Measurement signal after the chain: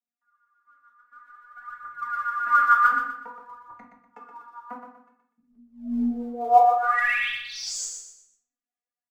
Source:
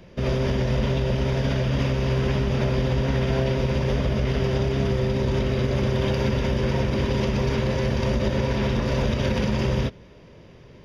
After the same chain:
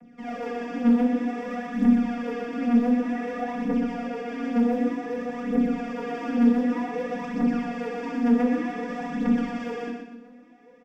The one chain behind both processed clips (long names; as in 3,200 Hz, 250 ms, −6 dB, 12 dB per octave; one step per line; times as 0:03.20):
low-shelf EQ 130 Hz −5 dB
phaser with its sweep stopped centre 750 Hz, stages 8
channel vocoder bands 16, saw 240 Hz
phase shifter 0.54 Hz, delay 4.5 ms, feedback 79%
repeating echo 122 ms, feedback 35%, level −6.5 dB
rectangular room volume 34 cubic metres, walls mixed, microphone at 0.53 metres